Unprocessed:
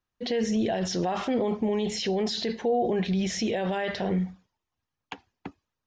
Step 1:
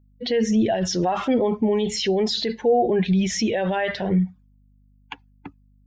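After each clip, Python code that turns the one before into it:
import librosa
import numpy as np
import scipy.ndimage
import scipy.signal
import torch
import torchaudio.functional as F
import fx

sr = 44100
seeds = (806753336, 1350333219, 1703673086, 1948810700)

y = fx.bin_expand(x, sr, power=1.5)
y = fx.add_hum(y, sr, base_hz=50, snr_db=34)
y = y * 10.0 ** (8.0 / 20.0)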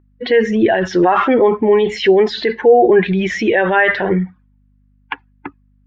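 y = fx.curve_eq(x, sr, hz=(230.0, 340.0, 640.0, 1100.0, 1700.0, 6400.0), db=(0, 11, 4, 13, 15, -11))
y = y * 10.0 ** (2.0 / 20.0)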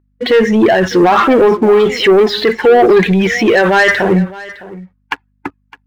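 y = fx.leveller(x, sr, passes=2)
y = y + 10.0 ** (-19.0 / 20.0) * np.pad(y, (int(610 * sr / 1000.0), 0))[:len(y)]
y = y * 10.0 ** (-1.0 / 20.0)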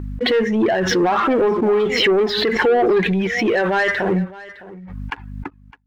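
y = fx.high_shelf(x, sr, hz=5000.0, db=-9.5)
y = fx.pre_swell(y, sr, db_per_s=42.0)
y = y * 10.0 ** (-8.0 / 20.0)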